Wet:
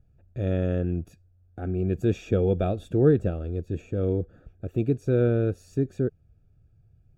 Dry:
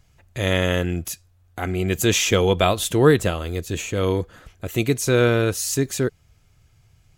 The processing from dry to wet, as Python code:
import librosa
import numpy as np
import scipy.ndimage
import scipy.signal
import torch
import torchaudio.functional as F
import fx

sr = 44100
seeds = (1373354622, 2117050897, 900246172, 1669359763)

y = scipy.signal.lfilter(np.full(43, 1.0 / 43), 1.0, x)
y = y * 10.0 ** (-2.0 / 20.0)